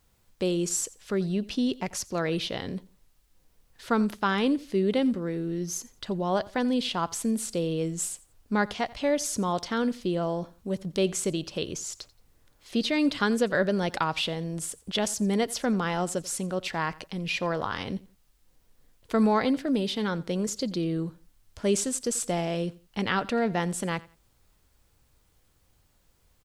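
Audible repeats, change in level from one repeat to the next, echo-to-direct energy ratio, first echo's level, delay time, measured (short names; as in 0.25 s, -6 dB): 2, -11.5 dB, -20.5 dB, -21.0 dB, 87 ms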